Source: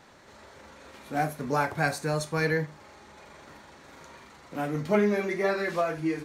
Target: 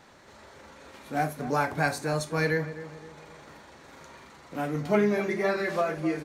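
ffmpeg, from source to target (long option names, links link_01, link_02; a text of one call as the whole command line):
ffmpeg -i in.wav -filter_complex "[0:a]asplit=2[link_01][link_02];[link_02]adelay=257,lowpass=frequency=1300:poles=1,volume=-12dB,asplit=2[link_03][link_04];[link_04]adelay=257,lowpass=frequency=1300:poles=1,volume=0.46,asplit=2[link_05][link_06];[link_06]adelay=257,lowpass=frequency=1300:poles=1,volume=0.46,asplit=2[link_07][link_08];[link_08]adelay=257,lowpass=frequency=1300:poles=1,volume=0.46,asplit=2[link_09][link_10];[link_10]adelay=257,lowpass=frequency=1300:poles=1,volume=0.46[link_11];[link_01][link_03][link_05][link_07][link_09][link_11]amix=inputs=6:normalize=0" out.wav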